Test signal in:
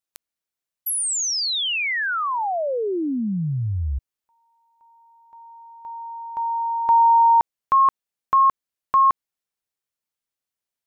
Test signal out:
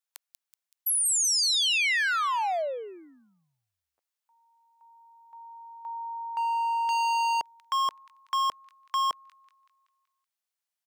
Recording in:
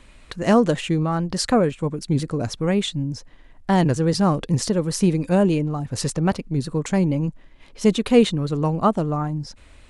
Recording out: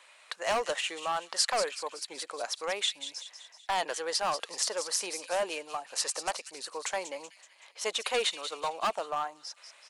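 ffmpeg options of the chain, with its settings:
-filter_complex "[0:a]highpass=f=630:w=0.5412,highpass=f=630:w=1.3066,acrossover=split=2400[s0][s1];[s0]volume=15.8,asoftclip=hard,volume=0.0631[s2];[s1]aecho=1:1:189|378|567|756|945|1134:0.376|0.192|0.0978|0.0499|0.0254|0.013[s3];[s2][s3]amix=inputs=2:normalize=0,volume=0.841"

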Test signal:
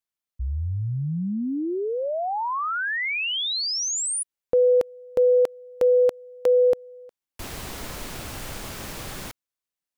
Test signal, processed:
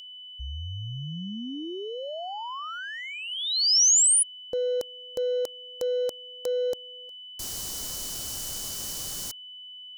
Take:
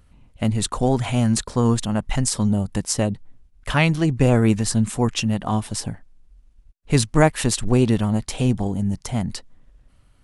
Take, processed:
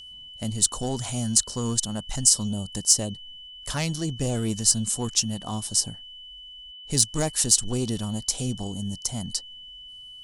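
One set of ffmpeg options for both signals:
-af "aeval=exprs='val(0)+0.0224*sin(2*PI*3000*n/s)':c=same,acontrast=85,highshelf=f=3800:t=q:w=1.5:g=13.5,volume=0.168"

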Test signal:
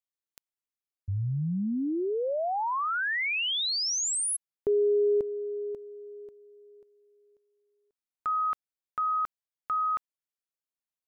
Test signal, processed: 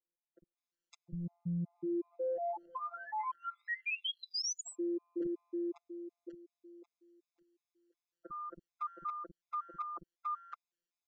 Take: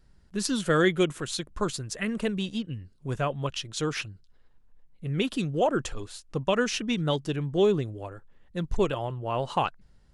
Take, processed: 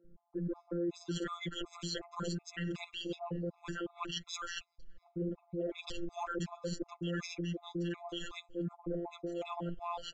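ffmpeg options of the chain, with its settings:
-filter_complex "[0:a]aresample=16000,aresample=44100,afftfilt=real='hypot(re,im)*cos(PI*b)':imag='0':win_size=1024:overlap=0.75,equalizer=f=350:w=1.4:g=9.5,acrossover=split=270|910[s0][s1][s2];[s0]adelay=50[s3];[s2]adelay=560[s4];[s3][s1][s4]amix=inputs=3:normalize=0,areverse,acompressor=threshold=0.01:ratio=8:attack=3.9:release=69:knee=1:detection=peak,areverse,afftfilt=real='re*gt(sin(2*PI*2.7*pts/sr)*(1-2*mod(floor(b*sr/1024/680),2)),0)':imag='im*gt(sin(2*PI*2.7*pts/sr)*(1-2*mod(floor(b*sr/1024/680),2)),0)':win_size=1024:overlap=0.75,volume=2.11"

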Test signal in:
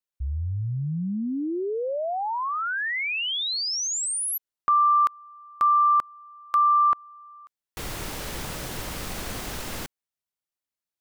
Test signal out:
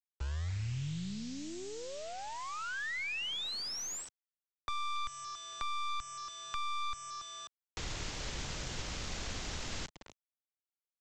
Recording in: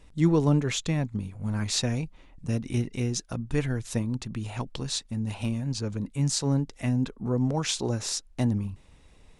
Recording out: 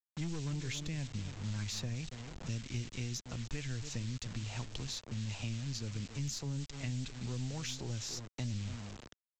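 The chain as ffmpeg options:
-filter_complex "[0:a]asplit=2[s0][s1];[s1]adelay=282,lowpass=f=870:p=1,volume=0.2,asplit=2[s2][s3];[s3]adelay=282,lowpass=f=870:p=1,volume=0.25,asplit=2[s4][s5];[s5]adelay=282,lowpass=f=870:p=1,volume=0.25[s6];[s0][s2][s4][s6]amix=inputs=4:normalize=0,aresample=16000,acrusher=bits=6:mix=0:aa=0.000001,aresample=44100,aeval=exprs='(tanh(8.91*val(0)+0.3)-tanh(0.3))/8.91':c=same,acrossover=split=120|2100[s7][s8][s9];[s7]acompressor=threshold=0.0178:ratio=4[s10];[s8]acompressor=threshold=0.00631:ratio=4[s11];[s9]acompressor=threshold=0.0112:ratio=4[s12];[s10][s11][s12]amix=inputs=3:normalize=0,volume=0.794"

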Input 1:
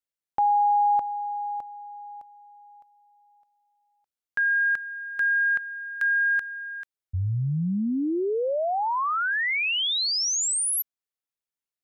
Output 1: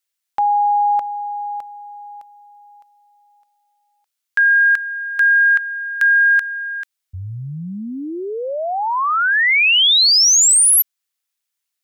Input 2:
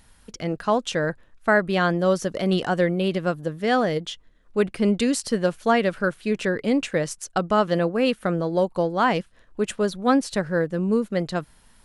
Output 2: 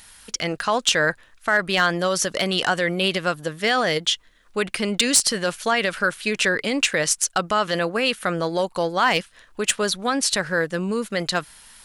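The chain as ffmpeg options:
-af "alimiter=limit=0.158:level=0:latency=1:release=41,tiltshelf=f=870:g=-8.5,aeval=exprs='clip(val(0),-1,0.178)':c=same,volume=1.88"

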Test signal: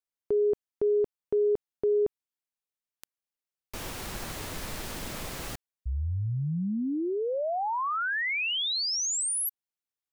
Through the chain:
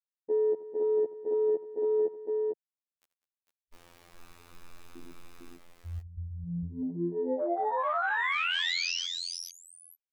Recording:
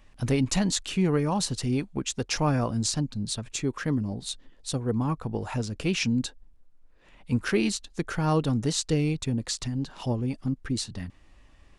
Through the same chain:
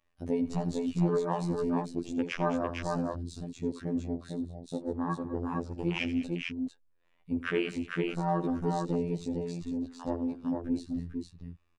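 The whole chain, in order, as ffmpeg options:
-filter_complex "[0:a]bass=f=250:g=-6,treble=f=4000:g=-4,afftfilt=real='hypot(re,im)*cos(PI*b)':imag='0':win_size=2048:overlap=0.75,asplit=2[s0][s1];[s1]asoftclip=type=tanh:threshold=0.0398,volume=0.316[s2];[s0][s2]amix=inputs=2:normalize=0,afwtdn=0.02,aecho=1:1:83|200|452:0.178|0.141|0.668"

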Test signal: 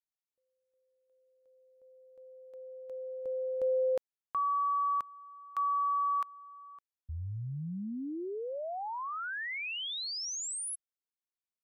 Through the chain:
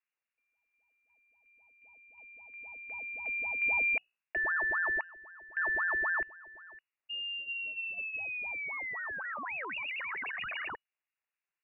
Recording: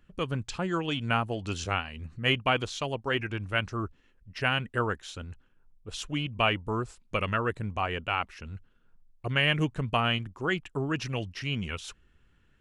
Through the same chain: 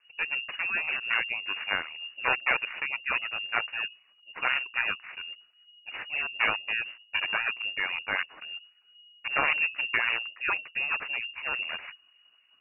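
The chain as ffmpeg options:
-af "bandreject=f=60:t=h:w=6,bandreject=f=120:t=h:w=6,bandreject=f=180:t=h:w=6,bandreject=f=240:t=h:w=6,bandreject=f=300:t=h:w=6,acrusher=samples=14:mix=1:aa=0.000001:lfo=1:lforange=8.4:lforate=3.8,lowpass=f=2500:t=q:w=0.5098,lowpass=f=2500:t=q:w=0.6013,lowpass=f=2500:t=q:w=0.9,lowpass=f=2500:t=q:w=2.563,afreqshift=-2900"

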